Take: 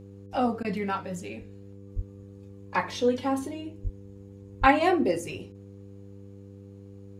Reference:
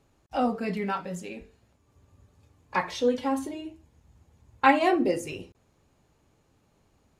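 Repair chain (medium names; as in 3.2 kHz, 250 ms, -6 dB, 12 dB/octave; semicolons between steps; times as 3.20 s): de-hum 99.1 Hz, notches 5; de-plosive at 1.95/3.83/4.60 s; interpolate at 0.63 s, 14 ms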